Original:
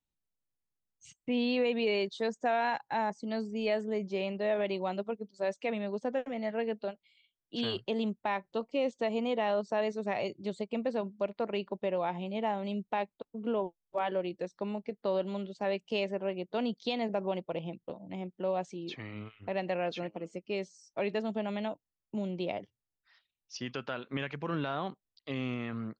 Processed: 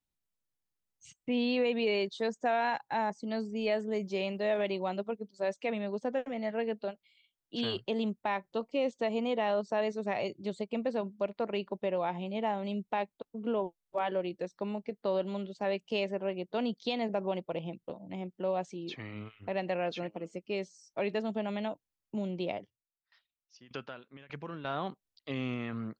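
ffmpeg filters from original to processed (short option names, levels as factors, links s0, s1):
-filter_complex "[0:a]asettb=1/sr,asplit=3[s0][s1][s2];[s0]atrim=end=3.934[s3];[s1]atrim=start=3.93:end=4.69,asetpts=PTS-STARTPTS,afade=t=in:d=0.004:c=qsin,afade=t=out:st=0.756:d=0.004:c=qsin,highshelf=f=5100:g=9.5[s4];[s2]atrim=start=4.686[s5];[s3][s4]acrossfade=d=0.004:c1=hsin:c2=qsin[s6];[s6][s5]acrossfade=d=0.004:c1=qsin:c2=hsin,asettb=1/sr,asplit=3[s7][s8][s9];[s7]atrim=end=22.534[s10];[s8]atrim=start=22.53:end=24.65,asetpts=PTS-STARTPTS,afade=t=in:d=0.004:c=qsin,afade=t=out:st=2.116:d=0.004:c=qsin,aeval=exprs='val(0)*pow(10,-21*if(lt(mod(1.7*n/s,1),2*abs(1.7)/1000),1-mod(1.7*n/s,1)/(2*abs(1.7)/1000),(mod(1.7*n/s,1)-2*abs(1.7)/1000)/(1-2*abs(1.7)/1000))/20)':c=same[s11];[s9]atrim=start=24.646[s12];[s10][s11]acrossfade=d=0.004:c1=hsin:c2=qsin[s13];[s13][s12]acrossfade=d=0.004:c1=qsin:c2=hsin"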